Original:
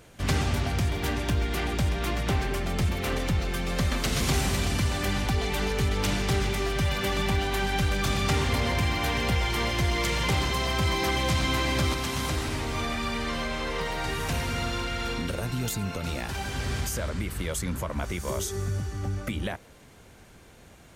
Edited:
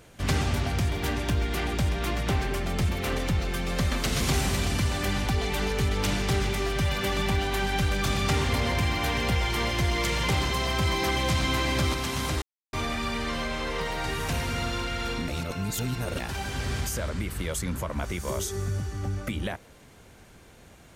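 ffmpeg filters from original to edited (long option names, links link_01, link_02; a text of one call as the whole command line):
ffmpeg -i in.wav -filter_complex "[0:a]asplit=5[link_01][link_02][link_03][link_04][link_05];[link_01]atrim=end=12.42,asetpts=PTS-STARTPTS,afade=type=out:start_time=12.416:duration=0.004:curve=hsin[link_06];[link_02]atrim=start=12.42:end=12.73,asetpts=PTS-STARTPTS,volume=0[link_07];[link_03]atrim=start=12.73:end=15.282,asetpts=PTS-STARTPTS,afade=type=in:duration=0.004:curve=hsin[link_08];[link_04]atrim=start=15.278:end=16.192,asetpts=PTS-STARTPTS,areverse[link_09];[link_05]atrim=start=16.188[link_10];[link_06][link_07][link_08]concat=n=3:v=0:a=1[link_11];[link_11][link_09]acrossfade=duration=0.004:curve1=hsin:curve2=hsin[link_12];[link_12][link_10]acrossfade=duration=0.004:curve1=hsin:curve2=hsin" out.wav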